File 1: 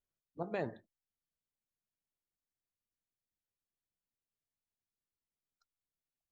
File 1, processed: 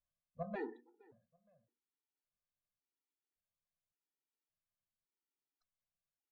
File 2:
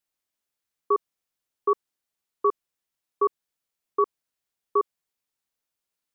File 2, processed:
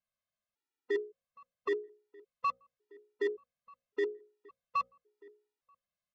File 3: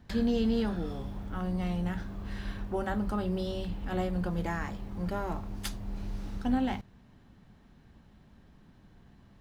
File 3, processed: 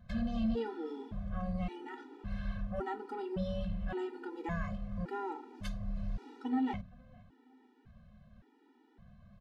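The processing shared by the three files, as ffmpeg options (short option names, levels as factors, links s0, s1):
-filter_complex "[0:a]aemphasis=mode=reproduction:type=75fm,bandreject=f=60:t=h:w=6,bandreject=f=120:t=h:w=6,bandreject=f=180:t=h:w=6,bandreject=f=240:t=h:w=6,bandreject=f=300:t=h:w=6,bandreject=f=360:t=h:w=6,bandreject=f=420:t=h:w=6,bandreject=f=480:t=h:w=6,bandreject=f=540:t=h:w=6,acontrast=33,asoftclip=type=tanh:threshold=0.141,asplit=2[s0][s1];[s1]adelay=467,lowpass=f=1800:p=1,volume=0.0668,asplit=2[s2][s3];[s3]adelay=467,lowpass=f=1800:p=1,volume=0.37[s4];[s2][s4]amix=inputs=2:normalize=0[s5];[s0][s5]amix=inputs=2:normalize=0,afftfilt=real='re*gt(sin(2*PI*0.89*pts/sr)*(1-2*mod(floor(b*sr/1024/250),2)),0)':imag='im*gt(sin(2*PI*0.89*pts/sr)*(1-2*mod(floor(b*sr/1024/250),2)),0)':win_size=1024:overlap=0.75,volume=0.531"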